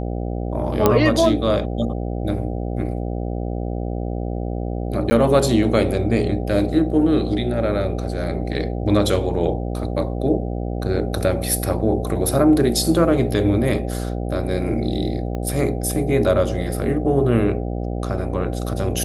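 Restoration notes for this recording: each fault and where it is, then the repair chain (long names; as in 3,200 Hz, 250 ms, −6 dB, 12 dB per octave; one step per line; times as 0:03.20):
mains buzz 60 Hz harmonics 13 −25 dBFS
0:00.86: click −1 dBFS
0:05.10–0:05.11: drop-out 10 ms
0:15.35: click −17 dBFS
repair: click removal
hum removal 60 Hz, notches 13
repair the gap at 0:05.10, 10 ms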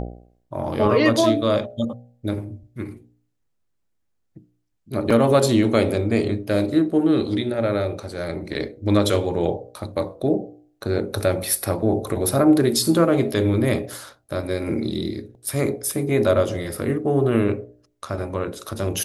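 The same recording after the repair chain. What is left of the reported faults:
0:15.35: click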